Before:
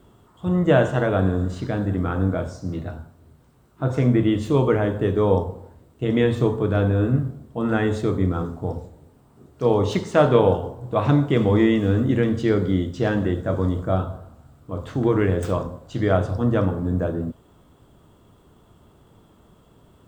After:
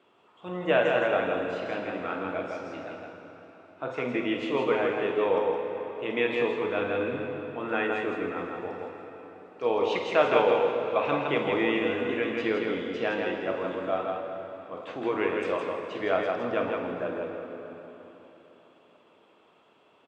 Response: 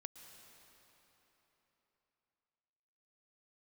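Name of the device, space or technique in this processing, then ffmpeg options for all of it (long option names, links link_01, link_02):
station announcement: -filter_complex "[0:a]asettb=1/sr,asplit=3[link_01][link_02][link_03];[link_01]atrim=end=7.874[link_04];[link_02]atrim=start=7.87:end=8.38,asetpts=PTS-STARTPTS,afade=type=in:duration=0.004:curve=qsin,afade=type=out:start_time=0.506:duration=0.004:curve=qsin,equalizer=frequency=4400:width_type=o:width=1.4:gain=-9.5[link_05];[link_03]atrim=start=8.376[link_06];[link_04][link_05]acrossfade=duration=0.004:curve1=hsin:curve2=qsin[link_07];[link_07][link_06]acrossfade=duration=0.004:curve1=qsin:curve2=hsin,highpass=440,lowpass=4000,equalizer=frequency=2500:width_type=o:width=0.39:gain=12,aecho=1:1:49.56|163.3:0.282|0.631[link_08];[1:a]atrim=start_sample=2205[link_09];[link_08][link_09]afir=irnorm=-1:irlink=0,volume=1.5dB"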